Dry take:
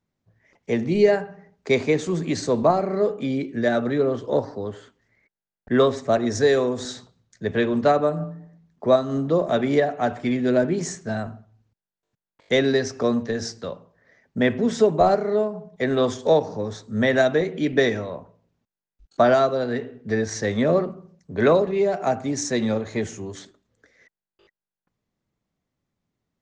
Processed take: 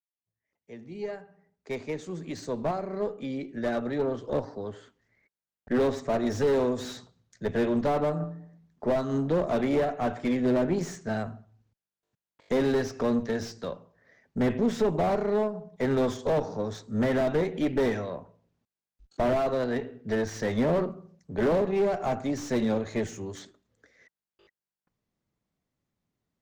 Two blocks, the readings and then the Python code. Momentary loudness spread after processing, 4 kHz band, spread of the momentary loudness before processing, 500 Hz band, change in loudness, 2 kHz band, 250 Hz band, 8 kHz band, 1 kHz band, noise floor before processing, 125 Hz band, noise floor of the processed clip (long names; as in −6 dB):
13 LU, −10.0 dB, 13 LU, −6.5 dB, −6.5 dB, −9.0 dB, −4.5 dB, −10.0 dB, −7.0 dB, below −85 dBFS, −4.5 dB, below −85 dBFS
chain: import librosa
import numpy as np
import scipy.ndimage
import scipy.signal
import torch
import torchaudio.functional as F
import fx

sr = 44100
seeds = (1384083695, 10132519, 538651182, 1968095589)

y = fx.fade_in_head(x, sr, length_s=6.21)
y = fx.tube_stage(y, sr, drive_db=17.0, bias=0.6)
y = fx.slew_limit(y, sr, full_power_hz=47.0)